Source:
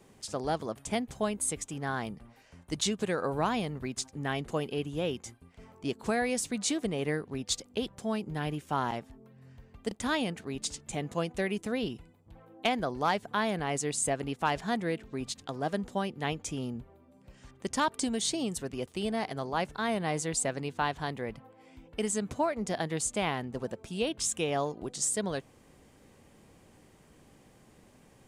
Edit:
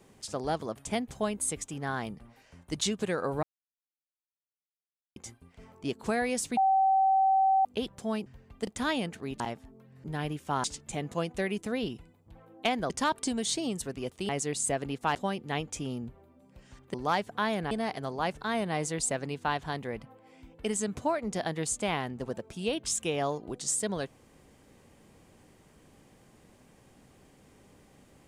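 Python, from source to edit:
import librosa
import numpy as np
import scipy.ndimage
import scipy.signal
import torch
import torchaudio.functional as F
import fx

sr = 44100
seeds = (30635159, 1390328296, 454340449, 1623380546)

y = fx.edit(x, sr, fx.silence(start_s=3.43, length_s=1.73),
    fx.bleep(start_s=6.57, length_s=1.08, hz=770.0, db=-20.5),
    fx.swap(start_s=8.26, length_s=0.6, other_s=9.5, other_length_s=1.14),
    fx.swap(start_s=12.9, length_s=0.77, other_s=17.66, other_length_s=1.39),
    fx.cut(start_s=14.53, length_s=1.34), tone=tone)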